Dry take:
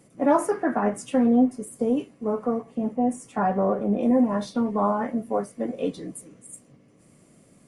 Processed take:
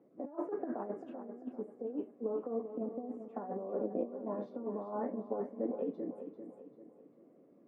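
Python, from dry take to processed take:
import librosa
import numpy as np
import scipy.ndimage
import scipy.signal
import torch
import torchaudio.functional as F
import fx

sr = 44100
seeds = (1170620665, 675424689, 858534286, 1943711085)

p1 = fx.over_compress(x, sr, threshold_db=-26.0, ratio=-0.5)
p2 = fx.ladder_bandpass(p1, sr, hz=440.0, resonance_pct=25)
p3 = p2 + fx.echo_feedback(p2, sr, ms=393, feedback_pct=43, wet_db=-10, dry=0)
y = F.gain(torch.from_numpy(p3), 1.5).numpy()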